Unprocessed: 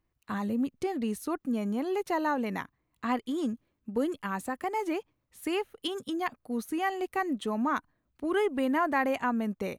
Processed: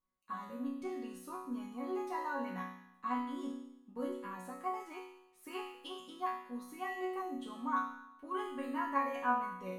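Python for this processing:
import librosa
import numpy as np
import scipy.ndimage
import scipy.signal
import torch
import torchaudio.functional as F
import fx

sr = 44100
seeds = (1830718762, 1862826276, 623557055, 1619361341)

y = fx.peak_eq(x, sr, hz=1100.0, db=12.5, octaves=0.39)
y = fx.resonator_bank(y, sr, root=54, chord='sus4', decay_s=0.84)
y = y * 10.0 ** (10.5 / 20.0)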